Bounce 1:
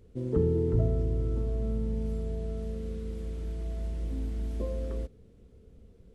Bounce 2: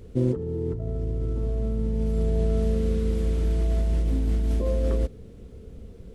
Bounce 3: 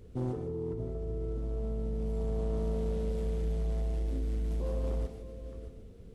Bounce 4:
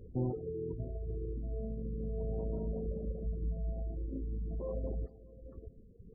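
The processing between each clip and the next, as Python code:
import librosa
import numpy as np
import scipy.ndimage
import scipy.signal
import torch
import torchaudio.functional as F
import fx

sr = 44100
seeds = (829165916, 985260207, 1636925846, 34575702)

y1 = fx.over_compress(x, sr, threshold_db=-33.0, ratio=-1.0)
y1 = y1 * 10.0 ** (9.0 / 20.0)
y2 = y1 + 10.0 ** (-14.0 / 20.0) * np.pad(y1, (int(618 * sr / 1000.0), 0))[:len(y1)]
y2 = 10.0 ** (-19.5 / 20.0) * np.tanh(y2 / 10.0 ** (-19.5 / 20.0))
y2 = fx.rev_gated(y2, sr, seeds[0], gate_ms=180, shape='rising', drr_db=5.0)
y2 = y2 * 10.0 ** (-7.5 / 20.0)
y3 = fx.dereverb_blind(y2, sr, rt60_s=1.9)
y3 = fx.spec_gate(y3, sr, threshold_db=-25, keep='strong')
y3 = y3 * 10.0 ** (1.0 / 20.0)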